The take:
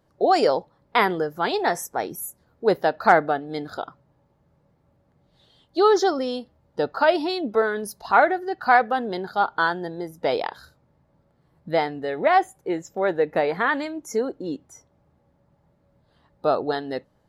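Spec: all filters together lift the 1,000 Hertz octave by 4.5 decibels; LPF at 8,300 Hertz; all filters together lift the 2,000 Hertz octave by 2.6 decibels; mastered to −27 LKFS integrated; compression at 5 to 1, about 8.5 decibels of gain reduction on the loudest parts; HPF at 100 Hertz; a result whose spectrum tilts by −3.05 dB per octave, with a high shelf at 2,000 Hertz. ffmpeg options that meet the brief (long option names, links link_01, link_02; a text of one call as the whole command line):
ffmpeg -i in.wav -af "highpass=100,lowpass=8300,equalizer=frequency=1000:width_type=o:gain=7,highshelf=frequency=2000:gain=-6,equalizer=frequency=2000:width_type=o:gain=3.5,acompressor=threshold=-17dB:ratio=5,volume=-2dB" out.wav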